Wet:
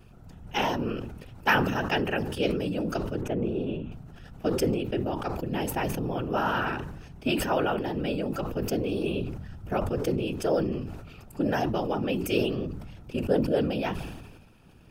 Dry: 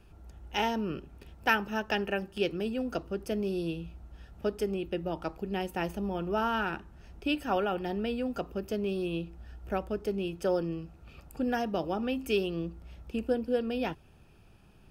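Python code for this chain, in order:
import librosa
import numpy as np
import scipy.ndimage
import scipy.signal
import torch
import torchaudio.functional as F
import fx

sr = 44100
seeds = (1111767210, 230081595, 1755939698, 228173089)

y = fx.moving_average(x, sr, points=9, at=(3.21, 3.92))
y = fx.whisperise(y, sr, seeds[0])
y = fx.sustainer(y, sr, db_per_s=44.0)
y = y * 10.0 ** (2.5 / 20.0)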